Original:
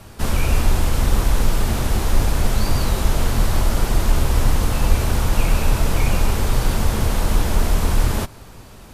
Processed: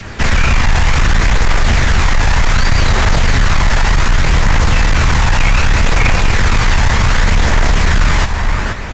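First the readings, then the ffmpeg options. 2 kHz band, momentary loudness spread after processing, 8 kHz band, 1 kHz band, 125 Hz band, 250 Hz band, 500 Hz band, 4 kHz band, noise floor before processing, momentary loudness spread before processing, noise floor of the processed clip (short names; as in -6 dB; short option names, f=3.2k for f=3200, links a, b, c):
+15.0 dB, 1 LU, +4.5 dB, +9.5 dB, +6.5 dB, +4.5 dB, +4.5 dB, +10.0 dB, -41 dBFS, 1 LU, -19 dBFS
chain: -filter_complex "[0:a]asoftclip=type=tanh:threshold=-10.5dB,asplit=2[a][b];[b]aecho=0:1:477|954|1431:0.335|0.104|0.0322[c];[a][c]amix=inputs=2:normalize=0,adynamicequalizer=threshold=0.00794:dfrequency=900:dqfactor=0.75:tfrequency=900:tqfactor=0.75:attack=5:release=100:ratio=0.375:range=3:mode=boostabove:tftype=bell,acrossover=split=150|3000[d][e][f];[e]acompressor=threshold=-32dB:ratio=2.5[g];[d][g][f]amix=inputs=3:normalize=0,apsyclip=18dB,equalizer=f=1.9k:w=1.4:g=12.5,acompressor=mode=upward:threshold=-22dB:ratio=2.5,aphaser=in_gain=1:out_gain=1:delay=1.2:decay=0.22:speed=0.66:type=triangular,aresample=16000,aresample=44100,volume=-8dB"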